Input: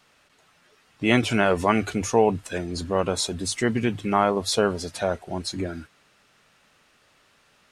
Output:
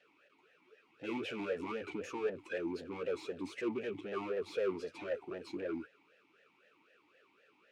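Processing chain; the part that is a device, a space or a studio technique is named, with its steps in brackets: talk box (tube stage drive 33 dB, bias 0.55; vowel sweep e-u 3.9 Hz); gain +8.5 dB

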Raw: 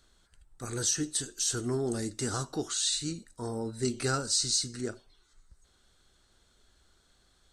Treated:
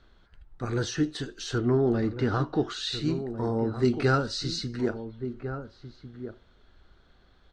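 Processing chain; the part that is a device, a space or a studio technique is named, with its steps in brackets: 1.58–2.68 LPF 3800 Hz 12 dB/oct; shout across a valley (air absorption 300 m; outdoor echo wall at 240 m, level -10 dB); gain +8 dB

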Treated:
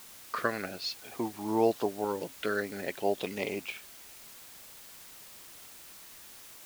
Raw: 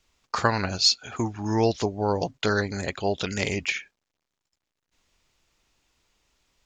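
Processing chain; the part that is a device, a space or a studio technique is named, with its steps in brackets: shortwave radio (BPF 270–2500 Hz; tremolo 0.64 Hz, depth 34%; LFO notch saw up 0.49 Hz 650–2400 Hz; white noise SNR 15 dB); gain -1.5 dB

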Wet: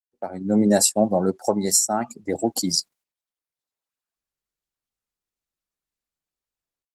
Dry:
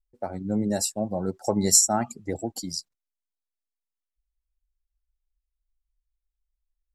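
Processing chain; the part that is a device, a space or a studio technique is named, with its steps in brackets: video call (HPF 180 Hz 12 dB/oct; AGC gain up to 14.5 dB; gate -49 dBFS, range -13 dB; Opus 24 kbps 48000 Hz)

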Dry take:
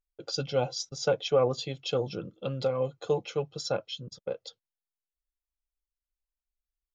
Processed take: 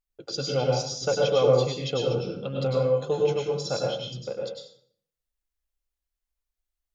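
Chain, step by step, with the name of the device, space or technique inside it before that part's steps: bathroom (reverb RT60 0.55 s, pre-delay 92 ms, DRR -1.5 dB)

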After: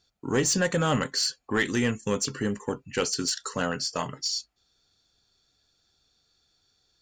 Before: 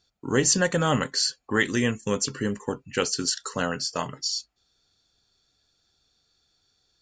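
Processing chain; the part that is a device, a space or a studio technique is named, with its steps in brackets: saturation between pre-emphasis and de-emphasis (high shelf 6700 Hz +9.5 dB; soft clip -15 dBFS, distortion -14 dB; high shelf 6700 Hz -9.5 dB)

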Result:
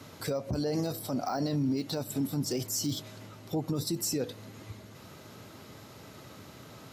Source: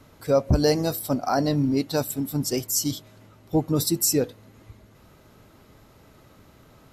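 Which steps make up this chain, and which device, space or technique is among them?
broadcast voice chain (HPF 86 Hz 24 dB/oct; de-esser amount 90%; compressor 5:1, threshold -25 dBFS, peak gain reduction 9.5 dB; bell 5000 Hz +5 dB 1.7 oct; limiter -26.5 dBFS, peak gain reduction 11 dB); gain +4 dB

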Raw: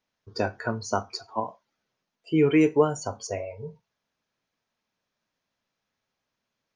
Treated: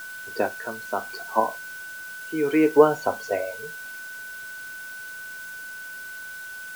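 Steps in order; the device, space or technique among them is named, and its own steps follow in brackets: shortwave radio (BPF 280–2500 Hz; tremolo 0.65 Hz, depth 76%; whine 1500 Hz -44 dBFS; white noise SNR 19 dB); gain +8.5 dB

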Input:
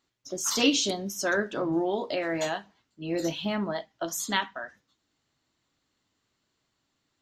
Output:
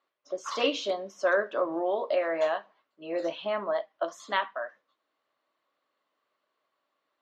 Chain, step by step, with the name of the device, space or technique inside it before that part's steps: tin-can telephone (BPF 450–2800 Hz; small resonant body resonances 580/1100 Hz, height 10 dB, ringing for 20 ms); gain -1.5 dB

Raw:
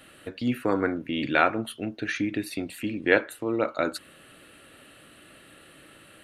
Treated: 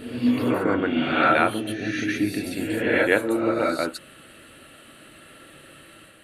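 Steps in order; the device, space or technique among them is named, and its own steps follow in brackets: reverse reverb (reverse; reverb RT60 0.90 s, pre-delay 0.11 s, DRR -1.5 dB; reverse)

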